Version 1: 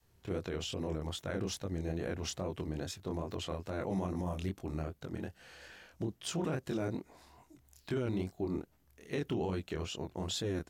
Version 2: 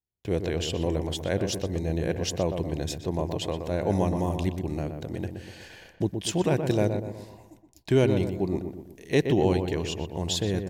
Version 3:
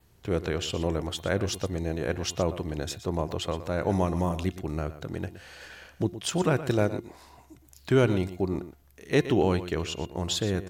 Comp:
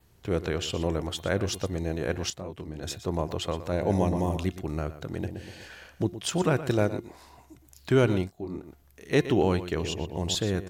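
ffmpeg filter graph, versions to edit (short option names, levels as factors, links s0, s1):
-filter_complex "[0:a]asplit=2[s0][s1];[1:a]asplit=3[s2][s3][s4];[2:a]asplit=6[s5][s6][s7][s8][s9][s10];[s5]atrim=end=2.302[s11];[s0]atrim=start=2.298:end=2.832[s12];[s6]atrim=start=2.828:end=3.722[s13];[s2]atrim=start=3.718:end=4.372[s14];[s7]atrim=start=4.368:end=5.192[s15];[s3]atrim=start=5.188:end=5.672[s16];[s8]atrim=start=5.668:end=8.3[s17];[s1]atrim=start=8.2:end=8.7[s18];[s9]atrim=start=8.6:end=9.802[s19];[s4]atrim=start=9.798:end=10.352[s20];[s10]atrim=start=10.348[s21];[s11][s12]acrossfade=d=0.004:c1=hsin:c2=hsin[s22];[s22][s13]acrossfade=d=0.004:c1=hsin:c2=hsin[s23];[s23][s14]acrossfade=d=0.004:c1=hsin:c2=hsin[s24];[s24][s15]acrossfade=d=0.004:c1=hsin:c2=hsin[s25];[s25][s16]acrossfade=d=0.004:c1=hsin:c2=hsin[s26];[s26][s17]acrossfade=d=0.004:c1=hsin:c2=hsin[s27];[s27][s18]acrossfade=d=0.1:c1=tri:c2=tri[s28];[s28][s19]acrossfade=d=0.1:c1=tri:c2=tri[s29];[s29][s20]acrossfade=d=0.004:c1=hsin:c2=hsin[s30];[s30][s21]acrossfade=d=0.004:c1=hsin:c2=hsin"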